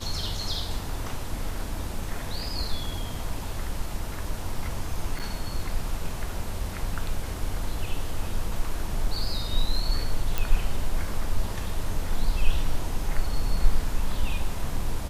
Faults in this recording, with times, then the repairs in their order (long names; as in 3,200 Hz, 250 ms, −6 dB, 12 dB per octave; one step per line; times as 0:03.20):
0:05.19–0:05.20: drop-out 7.5 ms
0:10.38: click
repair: click removal
repair the gap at 0:05.19, 7.5 ms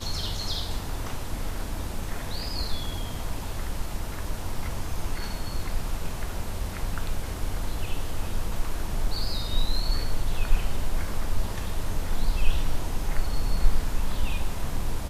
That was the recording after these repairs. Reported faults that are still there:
none of them is left